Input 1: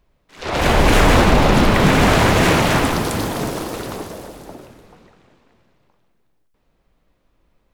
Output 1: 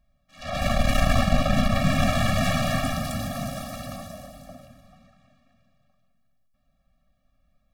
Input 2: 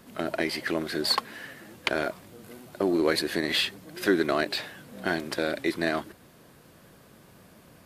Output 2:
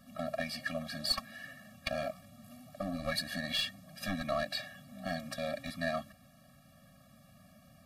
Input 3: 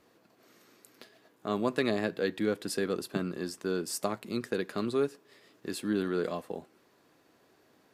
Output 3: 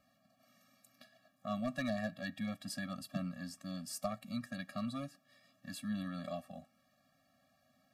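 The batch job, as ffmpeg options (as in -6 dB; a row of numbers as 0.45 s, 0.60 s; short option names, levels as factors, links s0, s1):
-af "aeval=exprs='clip(val(0),-1,0.0891)':c=same,afftfilt=real='re*eq(mod(floor(b*sr/1024/270),2),0)':imag='im*eq(mod(floor(b*sr/1024/270),2),0)':win_size=1024:overlap=0.75,volume=0.631"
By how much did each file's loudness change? -9.0 LU, -9.0 LU, -8.5 LU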